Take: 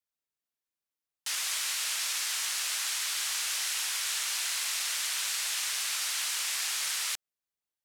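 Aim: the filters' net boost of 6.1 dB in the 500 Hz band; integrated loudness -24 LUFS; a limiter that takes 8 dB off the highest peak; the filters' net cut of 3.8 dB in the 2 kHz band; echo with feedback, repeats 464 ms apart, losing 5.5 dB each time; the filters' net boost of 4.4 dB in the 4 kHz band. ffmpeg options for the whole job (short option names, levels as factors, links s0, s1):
-af "equalizer=f=500:t=o:g=8.5,equalizer=f=2000:t=o:g=-8,equalizer=f=4000:t=o:g=7.5,alimiter=level_in=1.06:limit=0.0631:level=0:latency=1,volume=0.944,aecho=1:1:464|928|1392|1856|2320|2784|3248:0.531|0.281|0.149|0.079|0.0419|0.0222|0.0118,volume=2"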